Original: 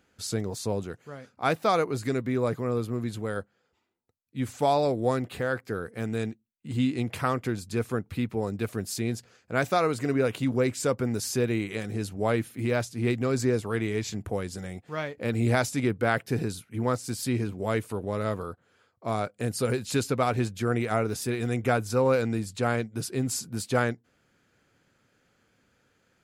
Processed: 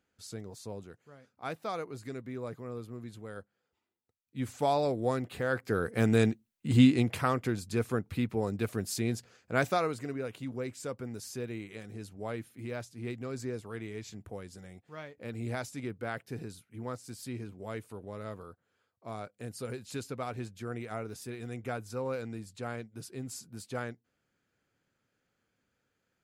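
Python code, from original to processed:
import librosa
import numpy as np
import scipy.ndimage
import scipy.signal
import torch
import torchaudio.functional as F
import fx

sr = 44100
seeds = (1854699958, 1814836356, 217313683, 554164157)

y = fx.gain(x, sr, db=fx.line((3.25, -12.5), (4.44, -4.5), (5.36, -4.5), (5.95, 5.5), (6.82, 5.5), (7.22, -2.0), (9.62, -2.0), (10.18, -12.0)))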